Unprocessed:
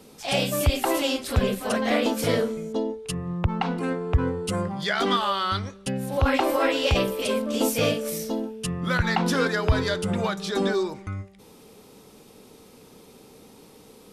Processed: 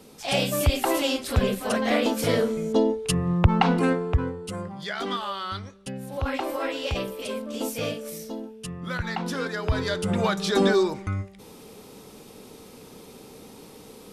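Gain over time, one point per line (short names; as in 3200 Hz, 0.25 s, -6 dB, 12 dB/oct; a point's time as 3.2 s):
2.34 s 0 dB
2.74 s +6 dB
3.84 s +6 dB
4.38 s -6.5 dB
9.45 s -6.5 dB
10.4 s +4 dB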